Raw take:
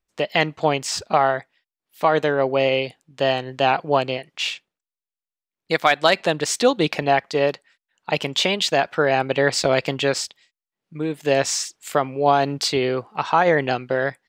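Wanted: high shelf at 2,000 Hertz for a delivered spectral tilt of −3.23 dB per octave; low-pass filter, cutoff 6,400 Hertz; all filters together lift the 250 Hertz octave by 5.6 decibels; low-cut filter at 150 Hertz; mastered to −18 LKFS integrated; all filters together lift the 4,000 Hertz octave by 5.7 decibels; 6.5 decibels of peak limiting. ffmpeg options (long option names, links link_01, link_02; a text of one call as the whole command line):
ffmpeg -i in.wav -af "highpass=150,lowpass=6400,equalizer=frequency=250:width_type=o:gain=7.5,highshelf=frequency=2000:gain=4.5,equalizer=frequency=4000:width_type=o:gain=3.5,volume=1.5dB,alimiter=limit=-4dB:level=0:latency=1" out.wav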